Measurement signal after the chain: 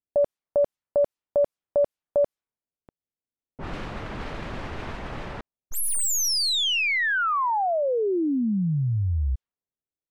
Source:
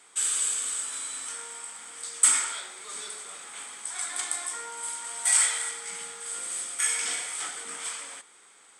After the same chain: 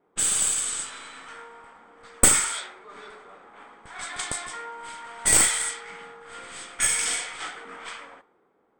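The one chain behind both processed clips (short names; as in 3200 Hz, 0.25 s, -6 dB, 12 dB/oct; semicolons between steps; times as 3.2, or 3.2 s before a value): tracing distortion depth 0.029 ms; low-pass opened by the level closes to 440 Hz, open at -25.5 dBFS; gain +4 dB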